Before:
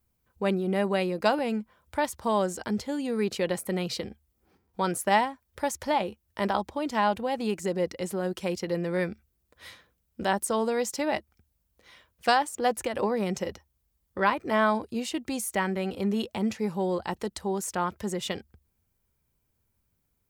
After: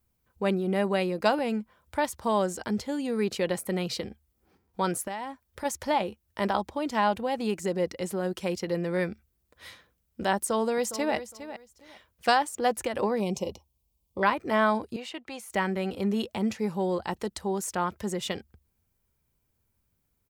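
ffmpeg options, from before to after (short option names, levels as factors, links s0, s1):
-filter_complex "[0:a]asplit=3[s0][s1][s2];[s0]afade=t=out:st=5.04:d=0.02[s3];[s1]acompressor=threshold=0.0316:ratio=12:attack=3.2:release=140:knee=1:detection=peak,afade=t=in:st=5.04:d=0.02,afade=t=out:st=5.64:d=0.02[s4];[s2]afade=t=in:st=5.64:d=0.02[s5];[s3][s4][s5]amix=inputs=3:normalize=0,asplit=2[s6][s7];[s7]afade=t=in:st=10.36:d=0.01,afade=t=out:st=11.15:d=0.01,aecho=0:1:410|820:0.237137|0.0474275[s8];[s6][s8]amix=inputs=2:normalize=0,asettb=1/sr,asplit=3[s9][s10][s11];[s9]atrim=end=13.204[s12];[s10]atrim=start=13.2:end=14.23,asetpts=PTS-STARTPTS,afade=t=in:d=0.004:c=qsin,afade=t=out:st=1.026:d=0.004:c=qsin,asuperstop=centerf=1600:order=8:qfactor=1.4[s13];[s11]atrim=start=14.226[s14];[s12][s13]acrossfade=d=0.004:c1=hsin:c2=qsin[s15];[s15][s14]acrossfade=d=0.004:c1=qsin:c2=hsin,asettb=1/sr,asplit=3[s16][s17][s18];[s16]atrim=end=14.964[s19];[s17]atrim=start=14.96:end=15.5,asetpts=PTS-STARTPTS,afade=t=in:d=0.004:c=qsin,afade=t=out:st=0.536:d=0.004:c=qsin,acrossover=split=490 3800:gain=0.2 1 0.224[s20][s21][s22];[s20][s21][s22]amix=inputs=3:normalize=0[s23];[s18]atrim=start=15.496[s24];[s19][s23]acrossfade=d=0.004:c1=hsin:c2=qsin[s25];[s25][s24]acrossfade=d=0.004:c1=qsin:c2=hsin"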